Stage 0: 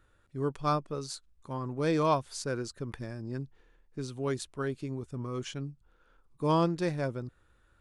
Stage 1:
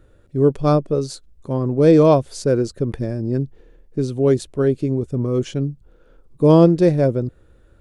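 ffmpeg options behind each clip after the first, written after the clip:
-af "lowshelf=f=740:t=q:w=1.5:g=9,volume=6dB"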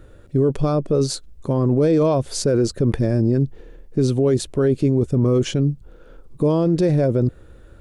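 -af "acompressor=threshold=-16dB:ratio=2,alimiter=limit=-17.5dB:level=0:latency=1:release=20,volume=7dB"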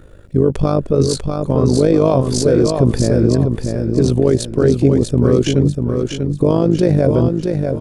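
-filter_complex "[0:a]tremolo=f=52:d=0.75,asplit=2[a][b];[b]aecho=0:1:643|1286|1929|2572:0.562|0.197|0.0689|0.0241[c];[a][c]amix=inputs=2:normalize=0,volume=7dB"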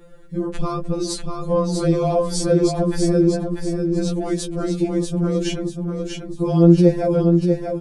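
-af "afftfilt=real='re*2.83*eq(mod(b,8),0)':imag='im*2.83*eq(mod(b,8),0)':win_size=2048:overlap=0.75,volume=-1dB"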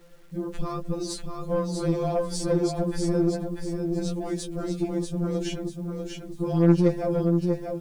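-af "aeval=exprs='0.891*(cos(1*acos(clip(val(0)/0.891,-1,1)))-cos(1*PI/2))+0.0891*(cos(3*acos(clip(val(0)/0.891,-1,1)))-cos(3*PI/2))+0.0355*(cos(5*acos(clip(val(0)/0.891,-1,1)))-cos(5*PI/2))+0.0282*(cos(8*acos(clip(val(0)/0.891,-1,1)))-cos(8*PI/2))':c=same,acrusher=bits=8:mix=0:aa=0.000001,volume=-6dB"

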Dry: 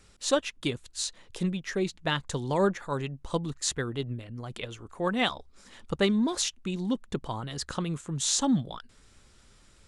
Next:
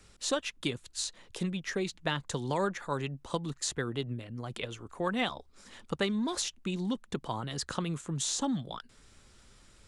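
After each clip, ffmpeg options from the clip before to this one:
-filter_complex "[0:a]acrossover=split=98|920[a][b][c];[a]acompressor=threshold=-55dB:ratio=4[d];[b]acompressor=threshold=-30dB:ratio=4[e];[c]acompressor=threshold=-31dB:ratio=4[f];[d][e][f]amix=inputs=3:normalize=0"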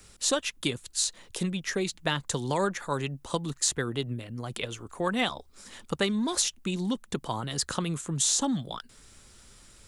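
-af "highshelf=f=7.8k:g=12,volume=3dB"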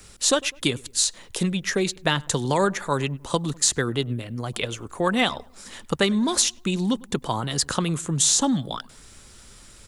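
-filter_complex "[0:a]asplit=2[a][b];[b]adelay=101,lowpass=f=1.5k:p=1,volume=-22.5dB,asplit=2[c][d];[d]adelay=101,lowpass=f=1.5k:p=1,volume=0.46,asplit=2[e][f];[f]adelay=101,lowpass=f=1.5k:p=1,volume=0.46[g];[a][c][e][g]amix=inputs=4:normalize=0,volume=6dB"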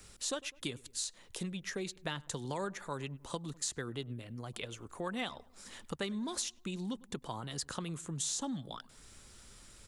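-af "acompressor=threshold=-41dB:ratio=1.5,volume=-8dB"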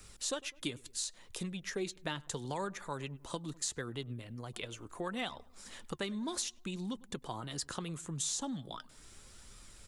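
-af "flanger=delay=0.8:depth=2.5:regen=76:speed=0.73:shape=sinusoidal,volume=4.5dB"

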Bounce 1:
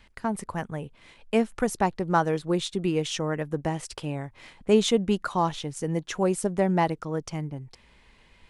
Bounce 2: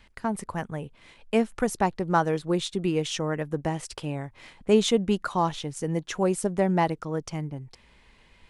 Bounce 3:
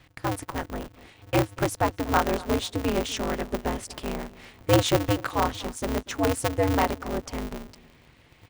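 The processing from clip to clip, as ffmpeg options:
-af anull
-filter_complex "[0:a]asplit=2[a][b];[b]adelay=241,lowpass=f=2k:p=1,volume=-19dB,asplit=2[c][d];[d]adelay=241,lowpass=f=2k:p=1,volume=0.39,asplit=2[e][f];[f]adelay=241,lowpass=f=2k:p=1,volume=0.39[g];[a][c][e][g]amix=inputs=4:normalize=0,aeval=exprs='val(0)*sgn(sin(2*PI*100*n/s))':c=same"

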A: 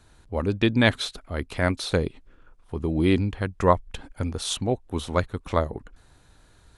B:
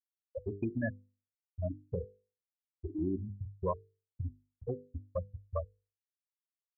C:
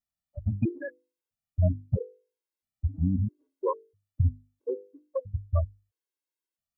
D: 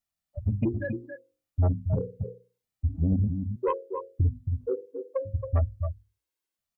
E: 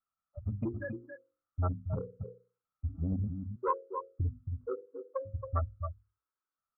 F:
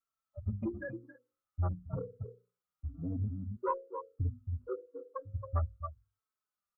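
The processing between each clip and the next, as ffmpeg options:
-af "afftfilt=real='re*gte(hypot(re,im),0.447)':imag='im*gte(hypot(re,im),0.447)':win_size=1024:overlap=0.75,acompressor=threshold=-32dB:ratio=3,bandreject=f=50:t=h:w=6,bandreject=f=100:t=h:w=6,bandreject=f=150:t=h:w=6,bandreject=f=200:t=h:w=6,bandreject=f=250:t=h:w=6,bandreject=f=300:t=h:w=6,bandreject=f=350:t=h:w=6,bandreject=f=400:t=h:w=6,bandreject=f=450:t=h:w=6,bandreject=f=500:t=h:w=6,volume=-1.5dB"
-af "lowshelf=f=290:g=11.5,afftfilt=real='re*gt(sin(2*PI*0.76*pts/sr)*(1-2*mod(floor(b*sr/1024/280),2)),0)':imag='im*gt(sin(2*PI*0.76*pts/sr)*(1-2*mod(floor(b*sr/1024/280),2)),0)':win_size=1024:overlap=0.75,volume=4dB"
-filter_complex "[0:a]bandreject=f=60:t=h:w=6,bandreject=f=120:t=h:w=6,bandreject=f=180:t=h:w=6,bandreject=f=240:t=h:w=6,bandreject=f=300:t=h:w=6,bandreject=f=360:t=h:w=6,bandreject=f=420:t=h:w=6,bandreject=f=480:t=h:w=6,bandreject=f=540:t=h:w=6,asplit=2[a][b];[b]adelay=274.1,volume=-8dB,highshelf=f=4k:g=-6.17[c];[a][c]amix=inputs=2:normalize=0,aeval=exprs='0.211*sin(PI/2*1.58*val(0)/0.211)':c=same,volume=-4.5dB"
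-af "lowpass=f=1.3k:t=q:w=12,volume=-8.5dB"
-filter_complex "[0:a]asplit=2[a][b];[b]adelay=3.9,afreqshift=-1[c];[a][c]amix=inputs=2:normalize=1,volume=1dB"

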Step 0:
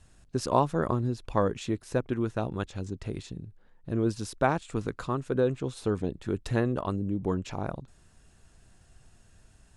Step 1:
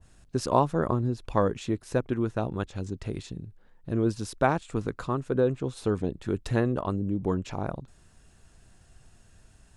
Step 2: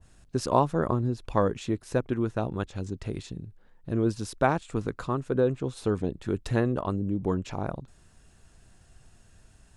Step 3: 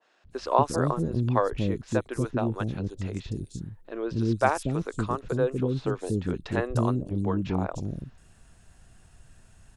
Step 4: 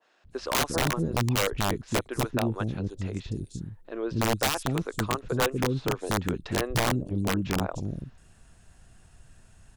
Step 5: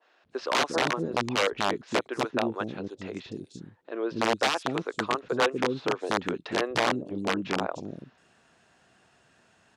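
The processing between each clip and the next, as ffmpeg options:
-af "adynamicequalizer=threshold=0.00708:dfrequency=1600:dqfactor=0.7:tfrequency=1600:tqfactor=0.7:attack=5:release=100:ratio=0.375:range=3:mode=cutabove:tftype=highshelf,volume=1.5dB"
-af anull
-filter_complex "[0:a]acrossover=split=380|4900[a][b][c];[a]adelay=240[d];[c]adelay=300[e];[d][b][e]amix=inputs=3:normalize=0,volume=2dB"
-af "aeval=exprs='(mod(7.5*val(0)+1,2)-1)/7.5':c=same"
-af "highpass=290,lowpass=4.7k,volume=2.5dB"

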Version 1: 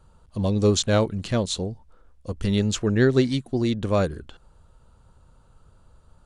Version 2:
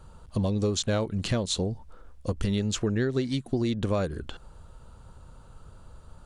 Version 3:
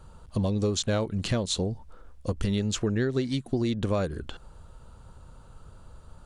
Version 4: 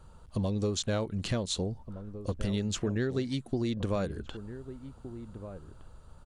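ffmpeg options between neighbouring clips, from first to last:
-af "acompressor=threshold=-30dB:ratio=6,volume=6dB"
-af anull
-filter_complex "[0:a]asplit=2[a][b];[b]adelay=1516,volume=-12dB,highshelf=f=4k:g=-34.1[c];[a][c]amix=inputs=2:normalize=0,volume=-4dB"

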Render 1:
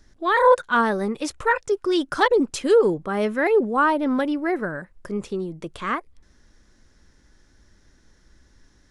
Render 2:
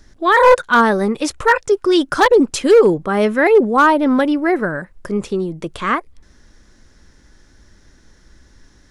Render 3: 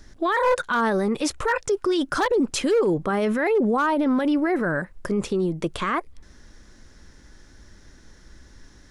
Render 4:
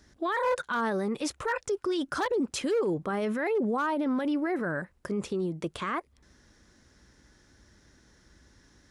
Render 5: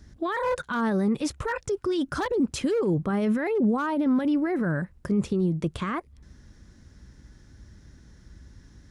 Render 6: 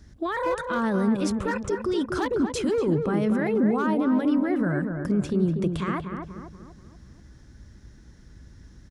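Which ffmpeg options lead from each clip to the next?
-af "volume=12dB,asoftclip=hard,volume=-12dB,volume=7.5dB"
-af "alimiter=limit=-15.5dB:level=0:latency=1:release=30"
-af "highpass=58,volume=-7dB"
-af "bass=f=250:g=13,treble=f=4k:g=0"
-filter_complex "[0:a]asplit=2[a][b];[b]adelay=241,lowpass=f=1.4k:p=1,volume=-5dB,asplit=2[c][d];[d]adelay=241,lowpass=f=1.4k:p=1,volume=0.51,asplit=2[e][f];[f]adelay=241,lowpass=f=1.4k:p=1,volume=0.51,asplit=2[g][h];[h]adelay=241,lowpass=f=1.4k:p=1,volume=0.51,asplit=2[i][j];[j]adelay=241,lowpass=f=1.4k:p=1,volume=0.51,asplit=2[k][l];[l]adelay=241,lowpass=f=1.4k:p=1,volume=0.51[m];[a][c][e][g][i][k][m]amix=inputs=7:normalize=0"

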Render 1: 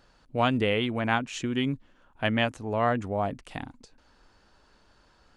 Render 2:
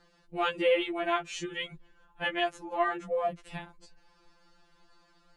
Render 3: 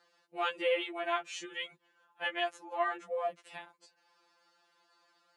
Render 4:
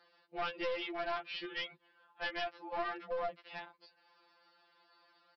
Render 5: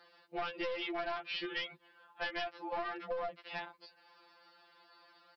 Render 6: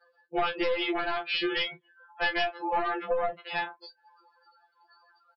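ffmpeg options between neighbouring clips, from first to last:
-af "afftfilt=real='re*2.83*eq(mod(b,8),0)':imag='im*2.83*eq(mod(b,8),0)':win_size=2048:overlap=0.75"
-af "highpass=470,volume=-3dB"
-af "acompressor=threshold=-33dB:ratio=6,aresample=11025,aeval=exprs='clip(val(0),-1,0.0106)':c=same,aresample=44100,volume=2dB"
-af "acompressor=threshold=-40dB:ratio=4,volume=5dB"
-filter_complex "[0:a]afftdn=nr=29:nf=-52,asplit=2[a][b];[b]aecho=0:1:14|36:0.562|0.224[c];[a][c]amix=inputs=2:normalize=0,volume=8.5dB"

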